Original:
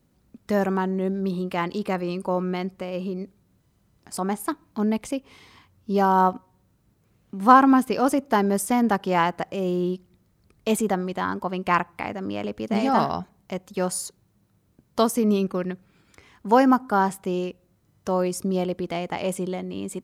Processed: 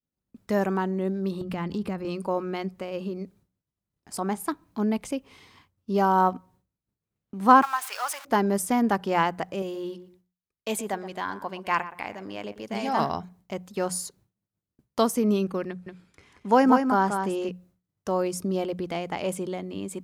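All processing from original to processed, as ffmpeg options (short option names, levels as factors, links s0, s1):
-filter_complex "[0:a]asettb=1/sr,asplit=3[s0][s1][s2];[s0]atrim=end=1.414[s3];[s1]atrim=start=1.41:end=2.05,asetpts=PTS-STARTPTS,afade=t=in:d=0.004:c=qsin,afade=t=out:st=0.636:d=0.004:c=qsin,bass=f=250:g=13,treble=f=4000:g=-1,acompressor=threshold=0.0562:ratio=3:attack=3.2:release=140:knee=1:detection=peak[s4];[s2]atrim=start=2.046[s5];[s3][s4]acrossfade=d=0.004:c1=hsin:c2=qsin[s6];[s6][s5]acrossfade=d=0.004:c1=qsin:c2=hsin,asettb=1/sr,asplit=3[s7][s8][s9];[s7]atrim=end=7.624[s10];[s8]atrim=start=7.62:end=8.25,asetpts=PTS-STARTPTS,afade=t=in:d=0.004:c=qsin,afade=t=out:st=0.626:d=0.004:c=qsin,aeval=exprs='val(0)+0.5*0.0355*sgn(val(0))':c=same,highpass=f=910:w=0.5412,highpass=f=910:w=1.3066[s11];[s9]atrim=start=8.246[s12];[s10][s11]acrossfade=d=0.004:c1=hsin:c2=qsin[s13];[s13][s12]acrossfade=d=0.004:c1=qsin:c2=hsin,asettb=1/sr,asplit=3[s14][s15][s16];[s14]atrim=end=9.624[s17];[s15]atrim=start=9.62:end=12.99,asetpts=PTS-STARTPTS,afade=t=in:d=0.004:c=qsin,afade=t=out:st=3.366:d=0.004:c=qsin,lowshelf=f=480:g=-9,bandreject=f=1300:w=9.2,asplit=2[s18][s19];[s19]adelay=121,lowpass=f=1600:p=1,volume=0.237,asplit=2[s20][s21];[s21]adelay=121,lowpass=f=1600:p=1,volume=0.25,asplit=2[s22][s23];[s23]adelay=121,lowpass=f=1600:p=1,volume=0.25[s24];[s18][s20][s22][s24]amix=inputs=4:normalize=0,atrim=end_sample=148617[s25];[s16]atrim=start=12.986[s26];[s17][s25]acrossfade=d=0.004:c1=hsin:c2=qsin[s27];[s27][s26]acrossfade=d=0.004:c1=qsin:c2=hsin,asettb=1/sr,asplit=3[s28][s29][s30];[s28]atrim=end=15.684[s31];[s29]atrim=start=15.68:end=17.49,asetpts=PTS-STARTPTS,afade=t=in:d=0.004:c=qsin,afade=t=out:st=1.806:d=0.004:c=qsin,lowpass=f=12000:w=0.5412,lowpass=f=12000:w=1.3066,aecho=1:1:183:0.501,atrim=end_sample=79821[s32];[s30]atrim=start=17.486[s33];[s31][s32]acrossfade=d=0.004:c1=hsin:c2=qsin[s34];[s34][s33]acrossfade=d=0.004:c1=qsin:c2=hsin,agate=range=0.0224:threshold=0.00316:ratio=3:detection=peak,bandreject=f=60:t=h:w=6,bandreject=f=120:t=h:w=6,bandreject=f=180:t=h:w=6,volume=0.794"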